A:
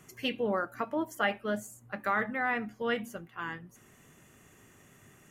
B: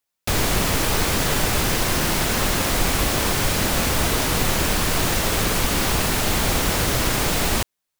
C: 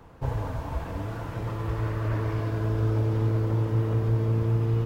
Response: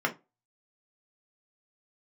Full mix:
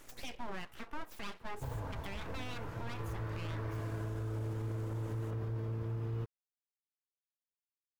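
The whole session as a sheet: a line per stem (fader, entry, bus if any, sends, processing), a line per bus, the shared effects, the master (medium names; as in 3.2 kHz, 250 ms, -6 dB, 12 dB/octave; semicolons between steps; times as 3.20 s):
+2.5 dB, 0.00 s, no send, compression 2:1, threshold -45 dBFS, peak gain reduction 12 dB; full-wave rectifier
mute
-9.5 dB, 1.40 s, no send, peaking EQ 1.5 kHz +2.5 dB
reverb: none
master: peak limiter -31 dBFS, peak gain reduction 7.5 dB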